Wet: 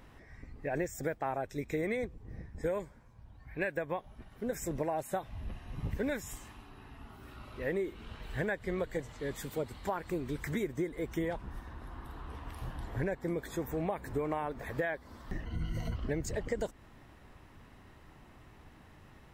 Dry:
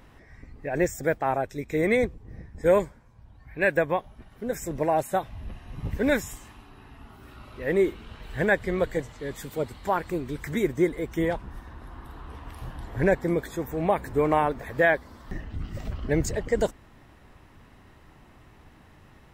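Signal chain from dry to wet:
0:15.45–0:15.96: EQ curve with evenly spaced ripples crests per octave 1.9, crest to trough 17 dB
downward compressor 12 to 1, threshold −27 dBFS, peak gain reduction 12.5 dB
level −3 dB

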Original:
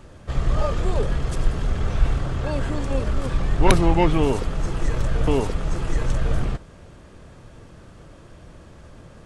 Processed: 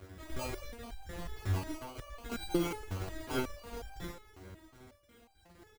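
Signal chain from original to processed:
time-frequency cells dropped at random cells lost 38%
in parallel at −1 dB: speech leveller within 4 dB 2 s
on the sum: parametric band 660 Hz −13.5 dB 0.76 octaves
tempo change 1.6×
high-pass filter 48 Hz 24 dB per octave
soft clipping −17 dBFS, distortion −10 dB
on a send at −13 dB: convolution reverb RT60 0.30 s, pre-delay 3 ms
on the sum: sample-rate reduction 1,800 Hz, jitter 0%
parametric band 150 Hz −13 dB 0.67 octaves
single-tap delay 786 ms −20 dB
step-sequenced resonator 5.5 Hz 94–790 Hz
level +2 dB

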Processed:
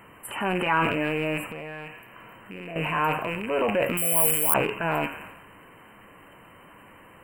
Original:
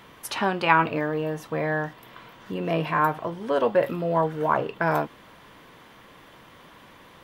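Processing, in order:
loose part that buzzes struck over −36 dBFS, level −20 dBFS
on a send: delay with a high-pass on its return 86 ms, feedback 62%, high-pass 1,500 Hz, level −15.5 dB
on the sum: flanger 0.85 Hz, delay 9.3 ms, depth 1.8 ms, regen +78%
0:03.97–0:04.54: bad sample-rate conversion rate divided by 8×, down filtered, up zero stuff
in parallel at +2 dB: brickwall limiter −20 dBFS, peak gain reduction 22.5 dB
on the sum: brick-wall band-stop 3,100–7,200 Hz
0:01.46–0:02.76: downward compressor 2.5 to 1, threshold −37 dBFS, peak gain reduction 12.5 dB
transient designer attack −3 dB, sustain +7 dB
level −3 dB

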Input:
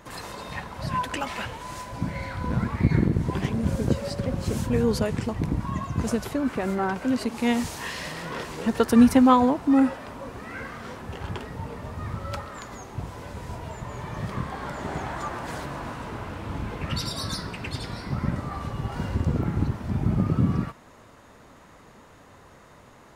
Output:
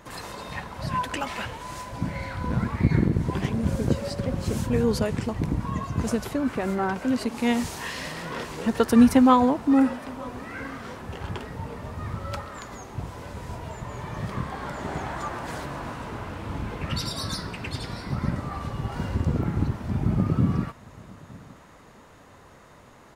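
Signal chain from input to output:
single-tap delay 915 ms −23 dB

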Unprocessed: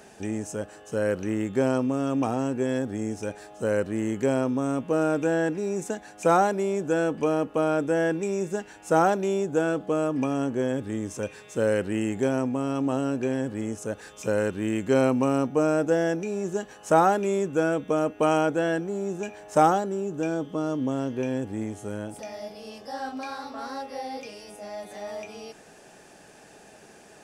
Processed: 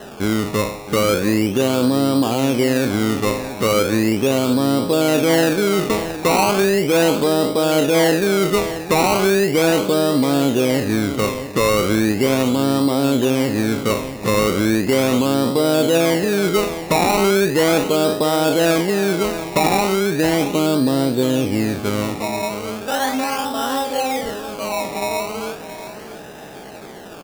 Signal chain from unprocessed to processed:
peak hold with a decay on every bin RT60 0.49 s
in parallel at +2 dB: downward compressor, threshold −31 dBFS, peak gain reduction 17 dB
on the sum: low-pass filter 2,000 Hz 12 dB per octave
sample-and-hold swept by an LFO 19×, swing 100% 0.37 Hz
brickwall limiter −15 dBFS, peak gain reduction 10.5 dB
on a send: single-tap delay 672 ms −12 dB
on the sum: level +6.5 dB

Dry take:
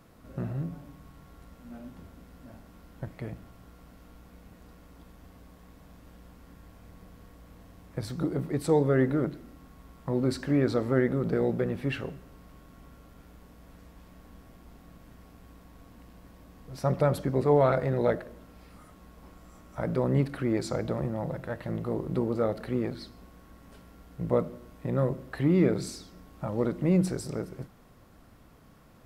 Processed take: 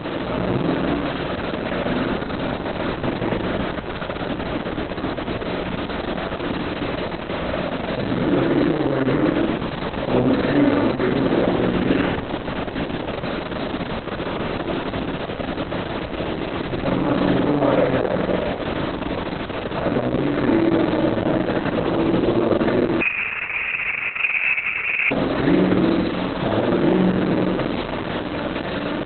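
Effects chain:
compressor on every frequency bin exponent 0.4
notch filter 750 Hz, Q 12
brickwall limiter −15 dBFS, peak gain reduction 8 dB
bit reduction 6 bits
double-tracking delay 45 ms −3 dB
flutter between parallel walls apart 8.3 metres, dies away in 1.1 s
0:23.01–0:25.11: voice inversion scrambler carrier 2,800 Hz
level +1.5 dB
Opus 6 kbit/s 48,000 Hz

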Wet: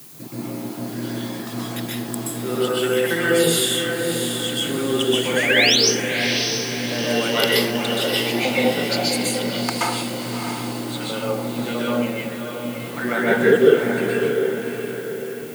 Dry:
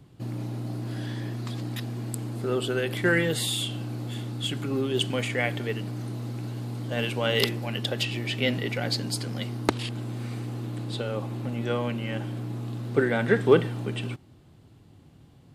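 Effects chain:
time-frequency cells dropped at random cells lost 22%
in parallel at 0 dB: downward compressor, threshold −37 dBFS, peak gain reduction 22.5 dB
0:05.36–0:05.76: on the sum: sound drawn into the spectrogram rise 1,500–6,400 Hz −22 dBFS
0:08.13–0:08.56: parametric band 790 Hz +13.5 dB 0.54 octaves
0:12.09–0:12.64: formant filter e
feedback delay with all-pass diffusion 660 ms, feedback 46%, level −6 dB
dense smooth reverb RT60 0.69 s, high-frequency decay 0.55×, pre-delay 115 ms, DRR −6.5 dB
background noise white −49 dBFS
high-pass filter 170 Hz 24 dB per octave
high-shelf EQ 8,100 Hz +9.5 dB
level −1.5 dB

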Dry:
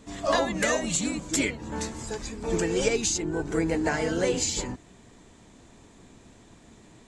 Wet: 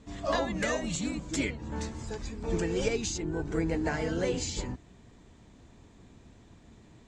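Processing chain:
low-pass filter 6,400 Hz 12 dB per octave
parametric band 62 Hz +8 dB 2.8 octaves
level −5.5 dB

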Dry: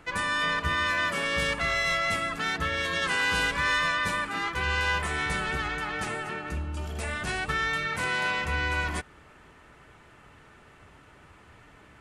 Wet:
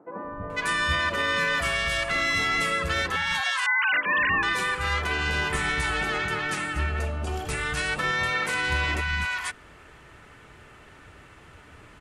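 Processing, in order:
0:03.16–0:03.93: three sine waves on the formant tracks
brickwall limiter −20 dBFS, peak gain reduction 6 dB
three-band delay without the direct sound mids, lows, highs 240/500 ms, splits 200/890 Hz
level +5 dB

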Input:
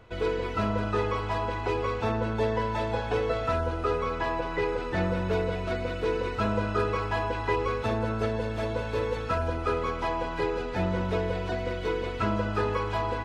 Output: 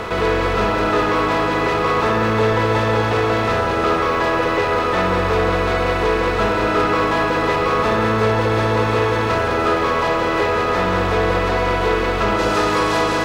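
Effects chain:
compressor on every frequency bin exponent 0.4
bass and treble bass −6 dB, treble +1 dB, from 0:12.38 treble +12 dB
leveller curve on the samples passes 2
feedback echo with a low-pass in the loop 64 ms, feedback 84%, low-pass 1,800 Hz, level −6 dB

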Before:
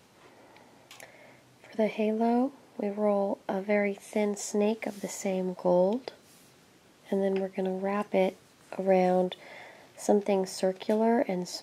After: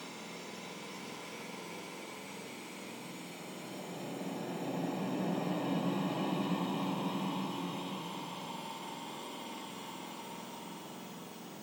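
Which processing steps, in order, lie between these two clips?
frequency axis turned over on the octave scale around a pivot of 1,400 Hz
extreme stretch with random phases 11×, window 0.50 s, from 0:00.43
mains-hum notches 50/100/150 Hz
level +12 dB

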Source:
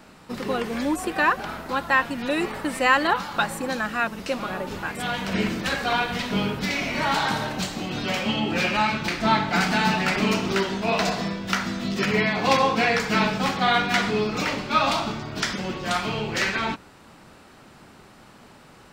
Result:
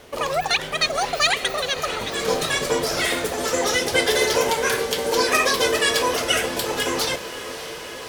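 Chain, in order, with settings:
low-shelf EQ 260 Hz +7 dB
wrong playback speed 33 rpm record played at 78 rpm
feedback delay with all-pass diffusion 594 ms, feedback 76%, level −14 dB

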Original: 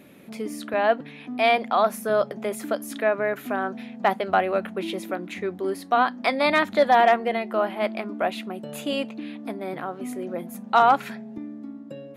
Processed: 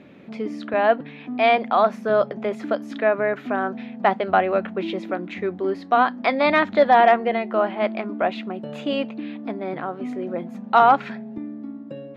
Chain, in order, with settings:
high-frequency loss of the air 190 metres
level +3.5 dB

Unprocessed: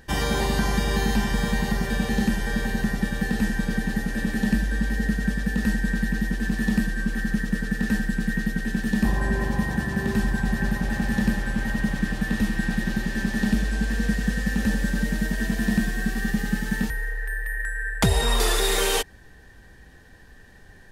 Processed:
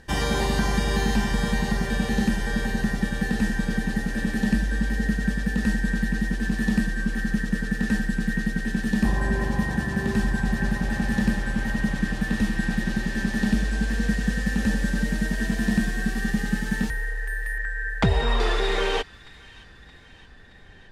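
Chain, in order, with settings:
low-pass filter 11,000 Hz 12 dB per octave, from 0:17.58 3,100 Hz
delay with a high-pass on its return 622 ms, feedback 60%, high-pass 1,500 Hz, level −20 dB

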